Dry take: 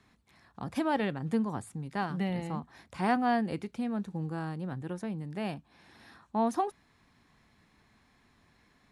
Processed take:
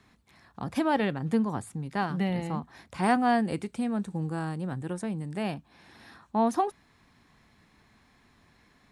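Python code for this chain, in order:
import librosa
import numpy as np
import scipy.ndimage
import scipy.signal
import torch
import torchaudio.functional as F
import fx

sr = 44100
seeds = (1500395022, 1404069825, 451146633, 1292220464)

y = fx.peak_eq(x, sr, hz=8400.0, db=12.5, octaves=0.33, at=(3.03, 5.43))
y = y * 10.0 ** (3.5 / 20.0)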